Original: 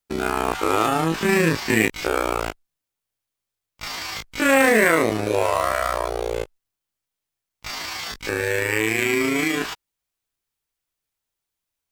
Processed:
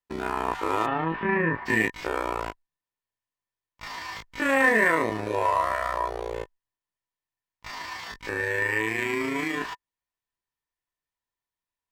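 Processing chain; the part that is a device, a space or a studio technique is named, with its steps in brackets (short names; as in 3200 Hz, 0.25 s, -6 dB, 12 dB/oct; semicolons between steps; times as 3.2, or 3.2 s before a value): inside a helmet (high shelf 5400 Hz -9 dB; small resonant body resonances 990/1800 Hz, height 13 dB, ringing for 40 ms); 0.85–1.65 LPF 3500 Hz -> 1900 Hz 24 dB/oct; gain -7 dB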